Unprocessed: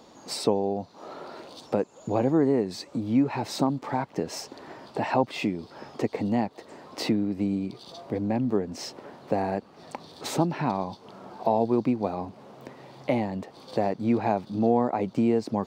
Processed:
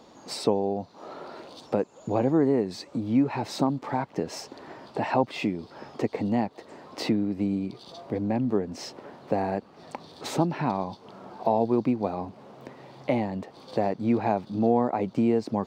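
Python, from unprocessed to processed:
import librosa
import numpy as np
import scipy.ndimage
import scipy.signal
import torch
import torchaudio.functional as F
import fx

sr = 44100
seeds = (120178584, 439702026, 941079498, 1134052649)

y = fx.high_shelf(x, sr, hz=6700.0, db=-5.5)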